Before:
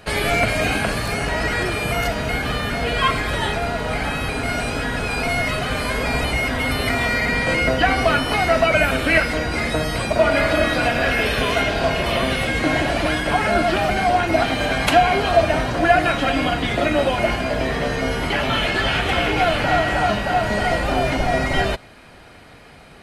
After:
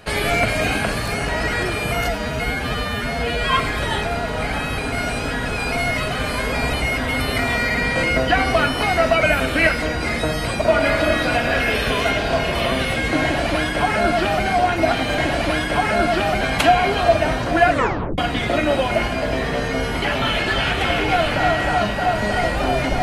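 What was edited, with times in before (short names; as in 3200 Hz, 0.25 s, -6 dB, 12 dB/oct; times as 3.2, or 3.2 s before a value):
2.07–3.05 stretch 1.5×
12.74–13.97 copy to 14.69
15.97 tape stop 0.49 s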